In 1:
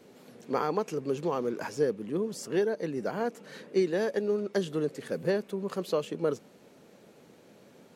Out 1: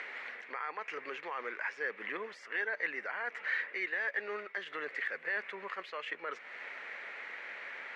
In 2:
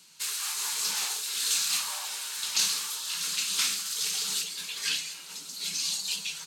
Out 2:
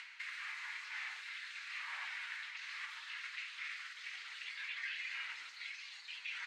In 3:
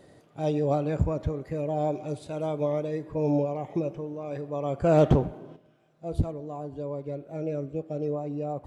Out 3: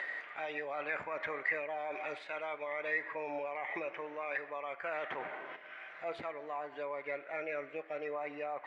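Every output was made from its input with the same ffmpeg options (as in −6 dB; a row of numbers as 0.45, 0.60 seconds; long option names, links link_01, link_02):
-af "highpass=1300,areverse,acompressor=threshold=-45dB:ratio=12,areverse,alimiter=level_in=19dB:limit=-24dB:level=0:latency=1:release=135,volume=-19dB,acompressor=mode=upward:threshold=-54dB:ratio=2.5,lowpass=frequency=2000:width_type=q:width=5.1,volume=11.5dB"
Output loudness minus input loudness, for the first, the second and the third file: −7.0, −15.5, −10.5 LU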